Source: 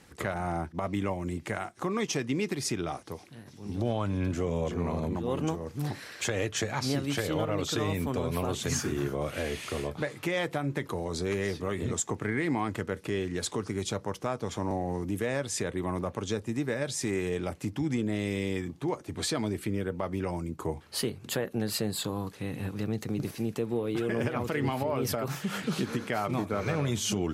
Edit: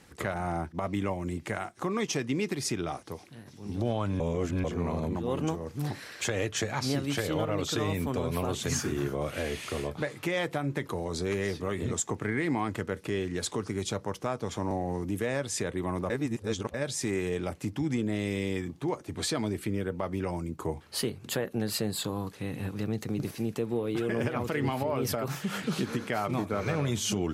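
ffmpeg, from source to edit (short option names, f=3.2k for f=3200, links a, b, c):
-filter_complex "[0:a]asplit=5[a][b][c][d][e];[a]atrim=end=4.202[f];[b]atrim=start=4.198:end=4.642,asetpts=PTS-STARTPTS,areverse[g];[c]atrim=start=4.638:end=16.102[h];[d]atrim=start=16.098:end=16.742,asetpts=PTS-STARTPTS,areverse[i];[e]atrim=start=16.738[j];[f][g]acrossfade=d=0.004:c1=hsin:c2=hsin[k];[k][h]acrossfade=d=0.004:c1=hsin:c2=hsin[l];[l][i]acrossfade=d=0.004:c1=hsin:c2=hsin[m];[m][j]acrossfade=d=0.004:c1=hsin:c2=hsin"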